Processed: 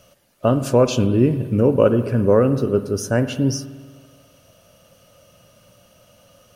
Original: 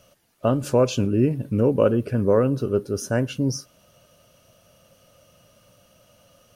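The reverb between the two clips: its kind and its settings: spring tank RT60 1.5 s, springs 50 ms, chirp 70 ms, DRR 11 dB; gain +3.5 dB

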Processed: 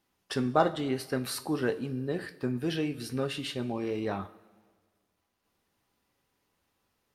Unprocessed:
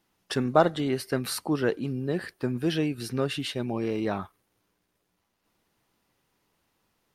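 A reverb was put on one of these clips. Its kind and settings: two-slope reverb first 0.32 s, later 1.6 s, from -16 dB, DRR 7.5 dB; gain -4 dB

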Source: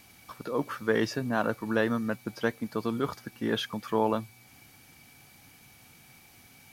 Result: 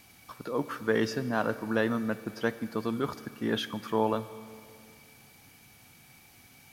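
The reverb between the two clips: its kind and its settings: Schroeder reverb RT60 2.5 s, combs from 28 ms, DRR 14 dB; gain -1 dB

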